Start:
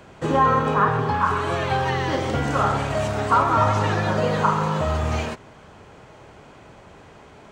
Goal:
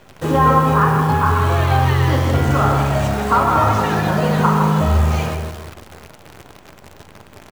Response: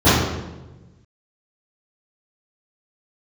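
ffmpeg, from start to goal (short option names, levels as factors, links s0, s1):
-filter_complex "[0:a]asplit=2[s0][s1];[s1]adelay=159,lowpass=f=1900:p=1,volume=0.562,asplit=2[s2][s3];[s3]adelay=159,lowpass=f=1900:p=1,volume=0.28,asplit=2[s4][s5];[s5]adelay=159,lowpass=f=1900:p=1,volume=0.28,asplit=2[s6][s7];[s7]adelay=159,lowpass=f=1900:p=1,volume=0.28[s8];[s0][s2][s4][s6][s8]amix=inputs=5:normalize=0,asplit=2[s9][s10];[1:a]atrim=start_sample=2205[s11];[s10][s11]afir=irnorm=-1:irlink=0,volume=0.0141[s12];[s9][s12]amix=inputs=2:normalize=0,acrusher=bits=7:dc=4:mix=0:aa=0.000001,volume=1.33"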